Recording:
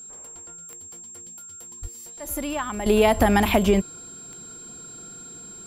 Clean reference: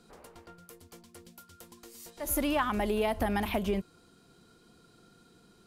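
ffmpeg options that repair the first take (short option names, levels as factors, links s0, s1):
-filter_complex "[0:a]adeclick=t=4,bandreject=f=7500:w=30,asplit=3[s0][s1][s2];[s0]afade=t=out:st=1.81:d=0.02[s3];[s1]highpass=f=140:w=0.5412,highpass=f=140:w=1.3066,afade=t=in:st=1.81:d=0.02,afade=t=out:st=1.93:d=0.02[s4];[s2]afade=t=in:st=1.93:d=0.02[s5];[s3][s4][s5]amix=inputs=3:normalize=0,asplit=3[s6][s7][s8];[s6]afade=t=out:st=3.04:d=0.02[s9];[s7]highpass=f=140:w=0.5412,highpass=f=140:w=1.3066,afade=t=in:st=3.04:d=0.02,afade=t=out:st=3.16:d=0.02[s10];[s8]afade=t=in:st=3.16:d=0.02[s11];[s9][s10][s11]amix=inputs=3:normalize=0,asetnsamples=n=441:p=0,asendcmd='2.86 volume volume -11.5dB',volume=1"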